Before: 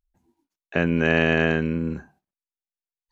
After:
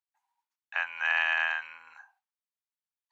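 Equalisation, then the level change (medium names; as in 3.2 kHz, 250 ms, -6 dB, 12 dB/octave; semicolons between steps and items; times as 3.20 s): elliptic high-pass 840 Hz, stop band 50 dB; treble shelf 3.3 kHz -8.5 dB; 0.0 dB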